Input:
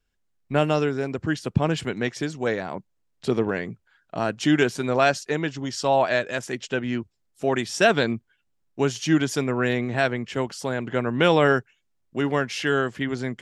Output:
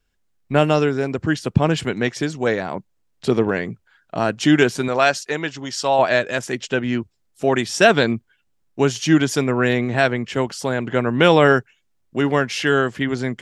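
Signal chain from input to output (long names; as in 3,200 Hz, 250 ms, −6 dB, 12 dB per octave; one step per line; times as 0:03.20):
0:04.88–0:05.99: low-shelf EQ 430 Hz −8.5 dB
level +5 dB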